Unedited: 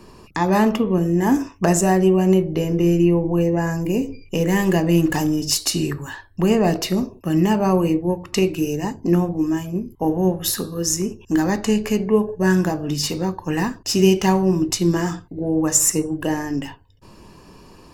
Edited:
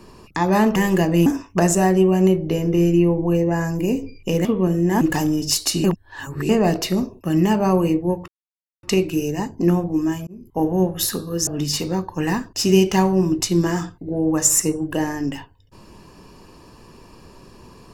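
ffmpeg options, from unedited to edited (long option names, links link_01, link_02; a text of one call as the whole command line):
ffmpeg -i in.wav -filter_complex "[0:a]asplit=10[link_01][link_02][link_03][link_04][link_05][link_06][link_07][link_08][link_09][link_10];[link_01]atrim=end=0.762[link_11];[link_02]atrim=start=4.508:end=5.012[link_12];[link_03]atrim=start=1.318:end=4.512[link_13];[link_04]atrim=start=0.758:end=1.322[link_14];[link_05]atrim=start=5.008:end=5.842[link_15];[link_06]atrim=start=5.838:end=6.492,asetpts=PTS-STARTPTS,areverse[link_16];[link_07]atrim=start=6.488:end=8.28,asetpts=PTS-STARTPTS,afade=type=out:start_time=1.788:duration=0.004:curve=hsin,apad=pad_dur=0.55[link_17];[link_08]atrim=start=8.28:end=9.72,asetpts=PTS-STARTPTS,afade=type=in:duration=0.004:curve=hsin,afade=type=out:start_time=1.436:duration=0.004:curve=hsin[link_18];[link_09]atrim=start=9.72:end=10.922,asetpts=PTS-STARTPTS,afade=type=in:duration=0.32[link_19];[link_10]atrim=start=12.768[link_20];[link_11][link_12]acrossfade=duration=0.004:curve1=hsin:curve2=hsin[link_21];[link_21][link_13]acrossfade=duration=0.004:curve1=hsin:curve2=hsin[link_22];[link_22][link_14]acrossfade=duration=0.004:curve1=hsin:curve2=hsin[link_23];[link_23][link_15]acrossfade=duration=0.004:curve1=hsin:curve2=hsin[link_24];[link_24][link_16]acrossfade=duration=0.004:curve1=hsin:curve2=hsin[link_25];[link_17][link_18][link_19]concat=n=3:v=0:a=1[link_26];[link_25][link_26]acrossfade=duration=0.004:curve1=hsin:curve2=hsin[link_27];[link_27][link_20]acrossfade=duration=0.004:curve1=hsin:curve2=hsin" out.wav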